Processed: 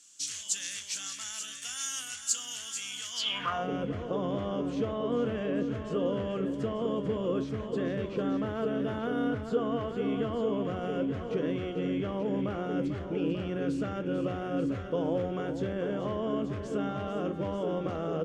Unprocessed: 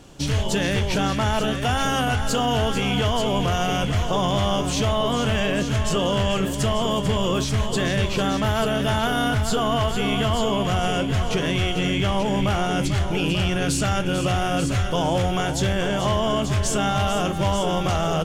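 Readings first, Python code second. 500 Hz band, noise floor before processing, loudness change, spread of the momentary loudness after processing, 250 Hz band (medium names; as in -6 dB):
-7.5 dB, -25 dBFS, -10.0 dB, 3 LU, -7.5 dB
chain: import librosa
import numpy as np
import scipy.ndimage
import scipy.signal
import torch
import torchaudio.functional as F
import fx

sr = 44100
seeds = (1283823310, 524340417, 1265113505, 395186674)

y = fx.band_shelf(x, sr, hz=560.0, db=-10.5, octaves=1.7)
y = fx.small_body(y, sr, hz=(310.0, 490.0), ring_ms=35, db=6)
y = fx.filter_sweep_bandpass(y, sr, from_hz=7300.0, to_hz=450.0, start_s=3.11, end_s=3.67, q=2.8)
y = y * 10.0 ** (4.5 / 20.0)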